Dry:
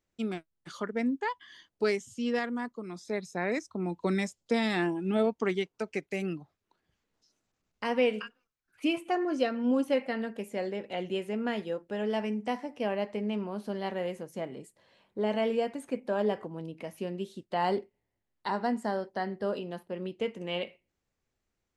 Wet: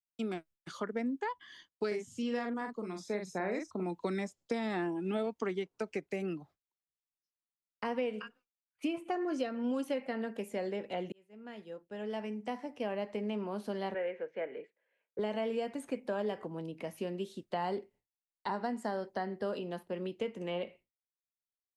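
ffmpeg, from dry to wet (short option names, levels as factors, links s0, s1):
-filter_complex "[0:a]asettb=1/sr,asplit=3[s0][s1][s2];[s0]atrim=end=1.874[s3];[s1]atrim=start=1.87:end=3.83,asetpts=PTS-STARTPTS,afade=t=in:d=0.004:c=qsin,afade=t=out:st=1.956:d=0.004:c=qsin,asplit=2[s4][s5];[s5]adelay=43,volume=0.531[s6];[s4][s6]amix=inputs=2:normalize=0,atrim=end_sample=86436[s7];[s2]atrim=start=3.826[s8];[s3][s7]acrossfade=d=0.004:c1=hsin:c2=qsin[s9];[s9][s8]acrossfade=d=0.004:c1=qsin:c2=hsin,asettb=1/sr,asplit=3[s10][s11][s12];[s10]atrim=end=13.944[s13];[s11]atrim=start=13.94:end=15.19,asetpts=PTS-STARTPTS,afade=t=in:d=0.004:c=qsin,afade=t=out:st=1.246:d=0.004:c=qsin,highpass=470,equalizer=f=470:t=q:w=4:g=9,equalizer=f=760:t=q:w=4:g=-4,equalizer=f=1100:t=q:w=4:g=-8,equalizer=f=1600:t=q:w=4:g=8,equalizer=f=2300:t=q:w=4:g=7,lowpass=f=2700:w=0.5412,lowpass=f=2700:w=1.3066[s14];[s12]atrim=start=15.186[s15];[s13][s14]acrossfade=d=0.004:c1=hsin:c2=qsin[s16];[s16][s15]acrossfade=d=0.004:c1=qsin:c2=hsin,asplit=2[s17][s18];[s17]atrim=end=11.12,asetpts=PTS-STARTPTS,afade=t=out:st=11.116:d=0.004:c=hsin[s19];[s18]atrim=start=11.12,asetpts=PTS-STARTPTS,afade=t=in:d=2.24[s20];[s19][s20]concat=n=2:v=0:a=1,agate=range=0.0224:threshold=0.00282:ratio=3:detection=peak,acrossover=split=220|1500[s21][s22][s23];[s21]acompressor=threshold=0.00447:ratio=4[s24];[s22]acompressor=threshold=0.0224:ratio=4[s25];[s23]acompressor=threshold=0.00398:ratio=4[s26];[s24][s25][s26]amix=inputs=3:normalize=0"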